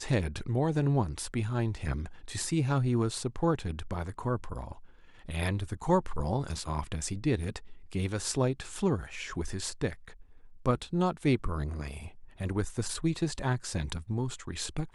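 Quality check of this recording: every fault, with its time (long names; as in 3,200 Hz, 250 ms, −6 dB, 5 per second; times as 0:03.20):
nothing to report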